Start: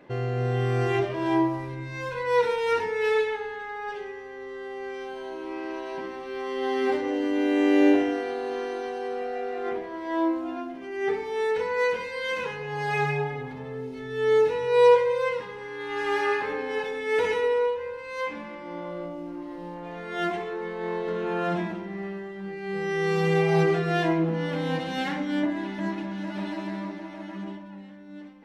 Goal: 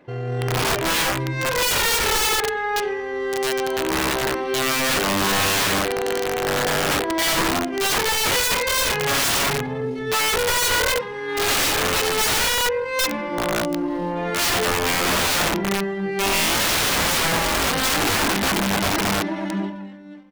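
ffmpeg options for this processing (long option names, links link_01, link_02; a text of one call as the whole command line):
ffmpeg -i in.wav -af "dynaudnorm=framelen=200:gausssize=11:maxgain=13dB,atempo=1.4,aeval=exprs='(mod(5.96*val(0)+1,2)-1)/5.96':channel_layout=same" out.wav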